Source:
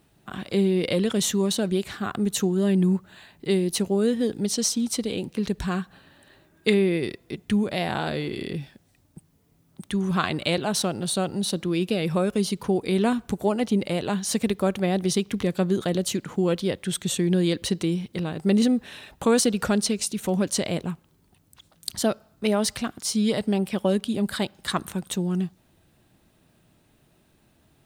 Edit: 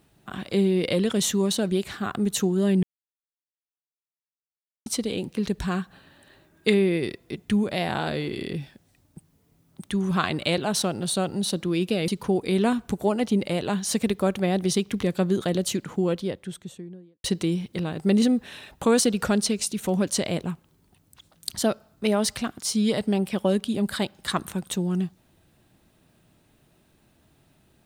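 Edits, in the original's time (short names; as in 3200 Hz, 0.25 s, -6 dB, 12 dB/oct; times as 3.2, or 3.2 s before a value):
2.83–4.86 mute
12.08–12.48 cut
16.11–17.64 studio fade out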